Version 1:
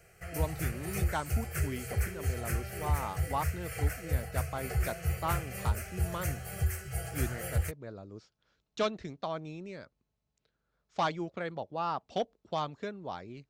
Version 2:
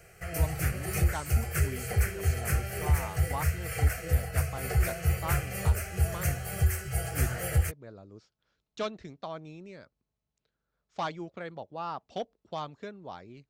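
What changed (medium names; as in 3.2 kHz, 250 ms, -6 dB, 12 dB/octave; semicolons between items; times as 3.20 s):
speech -3.0 dB; background +5.0 dB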